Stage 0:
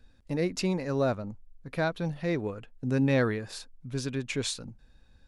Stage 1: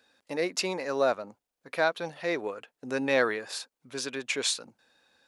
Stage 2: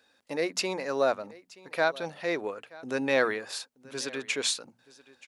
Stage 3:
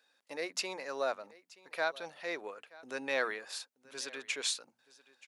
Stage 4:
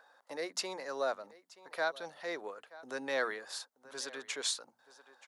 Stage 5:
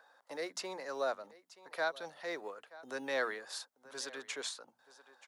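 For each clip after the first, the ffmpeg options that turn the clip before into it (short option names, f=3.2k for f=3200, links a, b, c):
-af "highpass=500,volume=5dB"
-af "bandreject=f=60:t=h:w=6,bandreject=f=120:t=h:w=6,bandreject=f=180:t=h:w=6,bandreject=f=240:t=h:w=6,aecho=1:1:928:0.0841"
-af "highpass=f=670:p=1,volume=-5dB"
-filter_complex "[0:a]equalizer=f=2.5k:t=o:w=0.37:g=-8.5,acrossover=split=690|1100[a][b][c];[b]acompressor=mode=upward:threshold=-47dB:ratio=2.5[d];[a][d][c]amix=inputs=3:normalize=0"
-filter_complex "[0:a]acrossover=split=240|2100[a][b][c];[a]acrusher=samples=19:mix=1:aa=0.000001:lfo=1:lforange=11.4:lforate=0.61[d];[c]alimiter=level_in=4.5dB:limit=-24dB:level=0:latency=1:release=302,volume=-4.5dB[e];[d][b][e]amix=inputs=3:normalize=0,volume=-1dB"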